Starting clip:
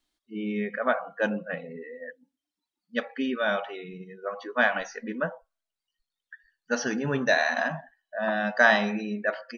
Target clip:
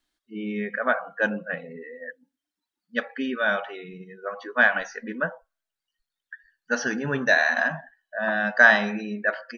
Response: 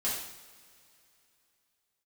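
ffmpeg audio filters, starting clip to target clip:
-af "equalizer=f=1600:t=o:w=0.46:g=6.5"

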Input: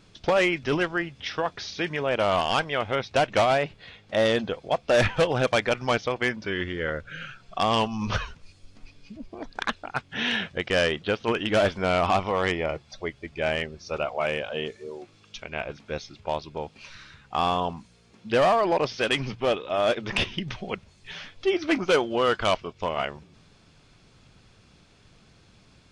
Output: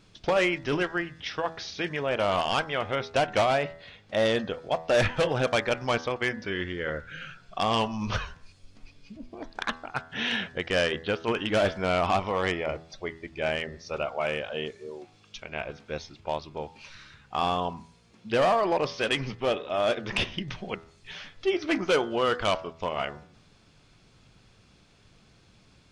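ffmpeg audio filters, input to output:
-af "bandreject=f=81.63:t=h:w=4,bandreject=f=163.26:t=h:w=4,bandreject=f=244.89:t=h:w=4,bandreject=f=326.52:t=h:w=4,bandreject=f=408.15:t=h:w=4,bandreject=f=489.78:t=h:w=4,bandreject=f=571.41:t=h:w=4,bandreject=f=653.04:t=h:w=4,bandreject=f=734.67:t=h:w=4,bandreject=f=816.3:t=h:w=4,bandreject=f=897.93:t=h:w=4,bandreject=f=979.56:t=h:w=4,bandreject=f=1061.19:t=h:w=4,bandreject=f=1142.82:t=h:w=4,bandreject=f=1224.45:t=h:w=4,bandreject=f=1306.08:t=h:w=4,bandreject=f=1387.71:t=h:w=4,bandreject=f=1469.34:t=h:w=4,bandreject=f=1550.97:t=h:w=4,bandreject=f=1632.6:t=h:w=4,bandreject=f=1714.23:t=h:w=4,bandreject=f=1795.86:t=h:w=4,bandreject=f=1877.49:t=h:w=4,bandreject=f=1959.12:t=h:w=4,bandreject=f=2040.75:t=h:w=4,volume=0.794"

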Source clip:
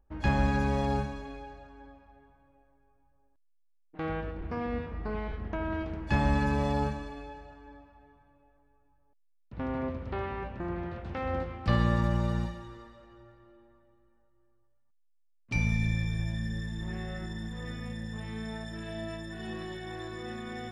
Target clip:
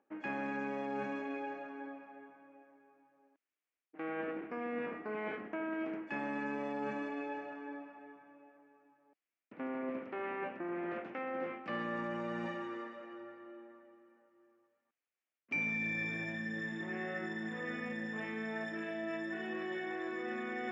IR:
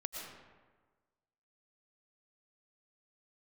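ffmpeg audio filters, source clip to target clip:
-af "highpass=f=240:w=0.5412,highpass=f=240:w=1.3066,equalizer=f=300:t=q:w=4:g=3,equalizer=f=940:t=q:w=4:g=-4,equalizer=f=2700:t=q:w=4:g=-4,lowpass=f=7200:w=0.5412,lowpass=f=7200:w=1.3066,areverse,acompressor=threshold=0.00708:ratio=6,areverse,highshelf=f=3200:t=q:w=3:g=-7.5,volume=2"

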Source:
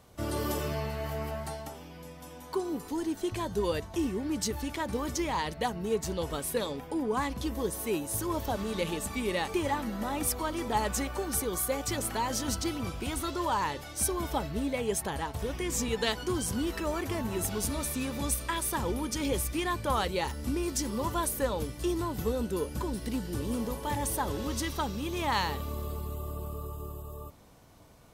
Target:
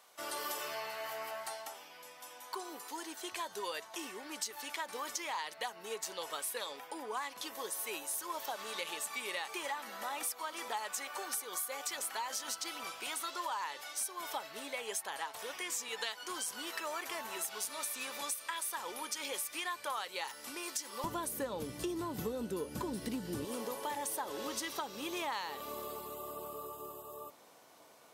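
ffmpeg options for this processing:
-af "asetnsamples=n=441:p=0,asendcmd='21.04 highpass f 150;23.45 highpass f 440',highpass=880,acompressor=threshold=0.0158:ratio=6,volume=1.12"

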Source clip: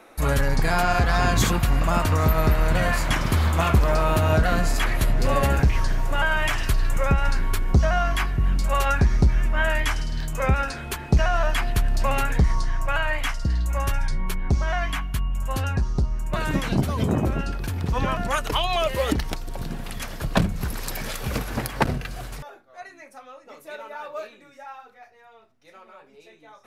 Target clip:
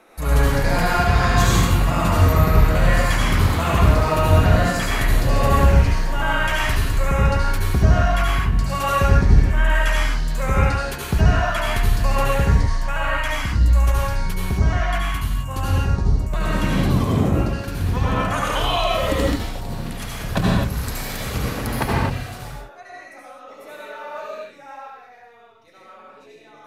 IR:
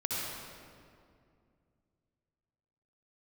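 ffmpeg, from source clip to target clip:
-filter_complex "[1:a]atrim=start_sample=2205,afade=t=out:st=0.28:d=0.01,atrim=end_sample=12789,asetrate=37926,aresample=44100[s0];[0:a][s0]afir=irnorm=-1:irlink=0,volume=0.75"

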